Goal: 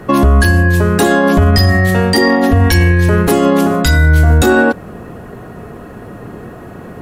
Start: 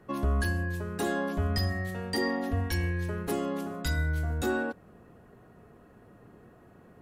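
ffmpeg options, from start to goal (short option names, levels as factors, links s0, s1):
-af "alimiter=level_in=17.8:limit=0.891:release=50:level=0:latency=1,volume=0.891"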